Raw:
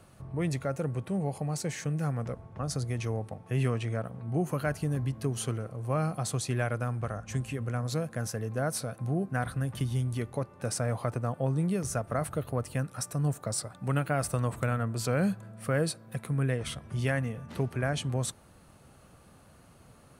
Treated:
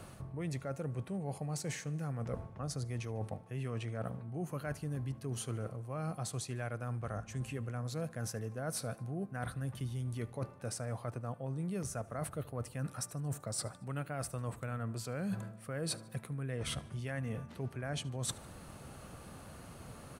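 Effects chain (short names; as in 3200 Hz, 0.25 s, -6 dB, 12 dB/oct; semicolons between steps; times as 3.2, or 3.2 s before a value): reverse; compressor 16:1, threshold -41 dBFS, peak gain reduction 18.5 dB; reverse; feedback echo 75 ms, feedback 51%, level -22.5 dB; gain +6 dB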